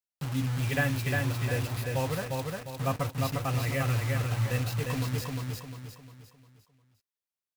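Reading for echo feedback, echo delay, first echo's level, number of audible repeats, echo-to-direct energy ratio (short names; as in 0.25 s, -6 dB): 40%, 0.353 s, -3.0 dB, 5, -2.0 dB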